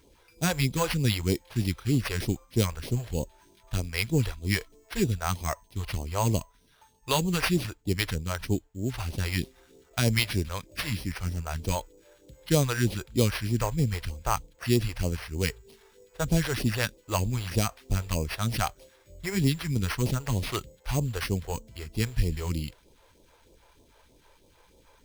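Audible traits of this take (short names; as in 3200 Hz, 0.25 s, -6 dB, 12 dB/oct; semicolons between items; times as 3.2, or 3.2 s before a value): aliases and images of a low sample rate 7300 Hz, jitter 0%; phasing stages 2, 3.2 Hz, lowest notch 190–1500 Hz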